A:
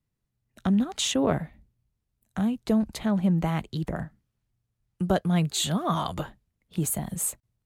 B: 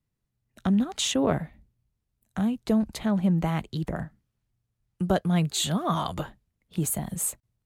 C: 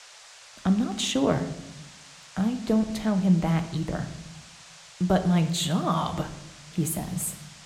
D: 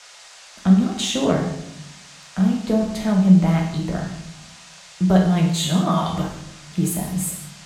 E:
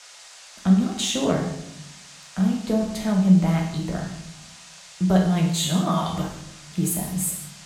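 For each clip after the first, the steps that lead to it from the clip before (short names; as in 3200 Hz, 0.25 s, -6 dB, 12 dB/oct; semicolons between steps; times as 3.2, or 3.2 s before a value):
nothing audible
tone controls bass 0 dB, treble -3 dB; shoebox room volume 340 m³, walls mixed, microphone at 0.49 m; band noise 520–7600 Hz -49 dBFS
non-linear reverb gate 0.22 s falling, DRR 0.5 dB; gain +1.5 dB
high shelf 5900 Hz +5.5 dB; gain -3 dB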